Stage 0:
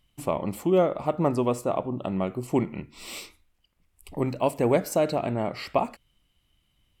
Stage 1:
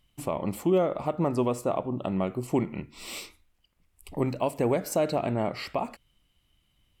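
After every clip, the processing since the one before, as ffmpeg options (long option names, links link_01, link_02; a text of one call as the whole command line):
ffmpeg -i in.wav -af "alimiter=limit=-15dB:level=0:latency=1:release=163" out.wav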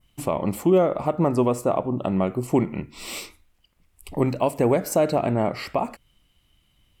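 ffmpeg -i in.wav -af "adynamicequalizer=threshold=0.002:dfrequency=3600:dqfactor=1.2:tfrequency=3600:tqfactor=1.2:attack=5:release=100:ratio=0.375:range=2.5:mode=cutabove:tftype=bell,volume=5.5dB" out.wav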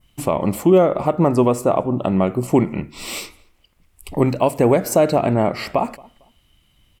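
ffmpeg -i in.wav -filter_complex "[0:a]asplit=2[link_01][link_02];[link_02]adelay=226,lowpass=frequency=2500:poles=1,volume=-24dB,asplit=2[link_03][link_04];[link_04]adelay=226,lowpass=frequency=2500:poles=1,volume=0.27[link_05];[link_01][link_03][link_05]amix=inputs=3:normalize=0,volume=5dB" out.wav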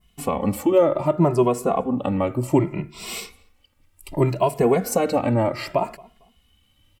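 ffmpeg -i in.wav -filter_complex "[0:a]asplit=2[link_01][link_02];[link_02]adelay=2.4,afreqshift=0.65[link_03];[link_01][link_03]amix=inputs=2:normalize=1" out.wav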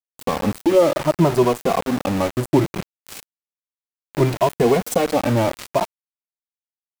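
ffmpeg -i in.wav -af "aeval=exprs='val(0)*gte(abs(val(0)),0.0596)':channel_layout=same,volume=2dB" out.wav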